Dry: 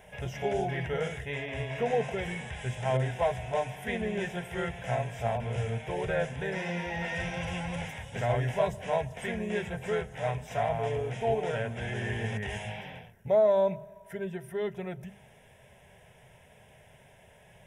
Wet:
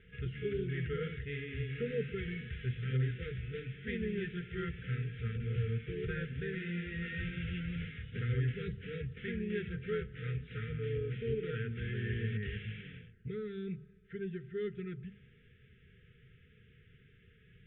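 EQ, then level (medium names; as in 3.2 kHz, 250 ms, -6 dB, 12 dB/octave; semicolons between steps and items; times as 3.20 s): brick-wall FIR band-stop 500–1200 Hz; steep low-pass 3.7 kHz 72 dB/octave; bass shelf 260 Hz +7 dB; -7.0 dB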